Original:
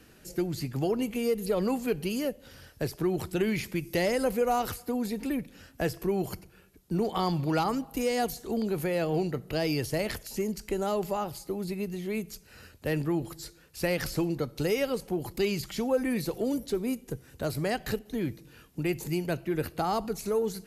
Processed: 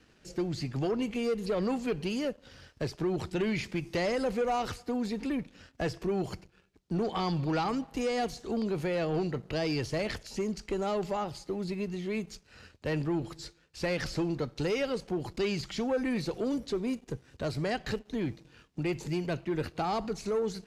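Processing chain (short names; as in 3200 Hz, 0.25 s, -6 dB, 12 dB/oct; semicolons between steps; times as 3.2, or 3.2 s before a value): high shelf 3700 Hz +9.5 dB; sample leveller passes 2; air absorption 130 m; gain -8 dB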